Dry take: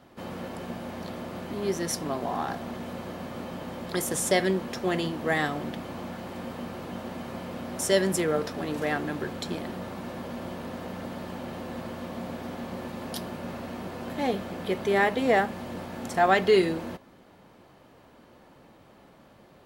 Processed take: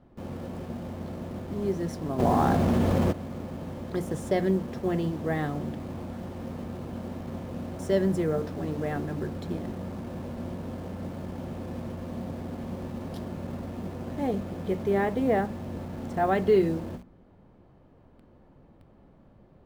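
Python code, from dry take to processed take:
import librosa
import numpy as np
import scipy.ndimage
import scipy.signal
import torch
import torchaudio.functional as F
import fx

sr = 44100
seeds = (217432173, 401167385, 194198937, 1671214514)

p1 = fx.tilt_eq(x, sr, slope=-4.0)
p2 = fx.hum_notches(p1, sr, base_hz=60, count=5)
p3 = fx.quant_dither(p2, sr, seeds[0], bits=6, dither='none')
p4 = p2 + (p3 * 10.0 ** (-9.0 / 20.0))
p5 = fx.env_flatten(p4, sr, amount_pct=70, at=(2.18, 3.11), fade=0.02)
y = p5 * 10.0 ** (-8.5 / 20.0)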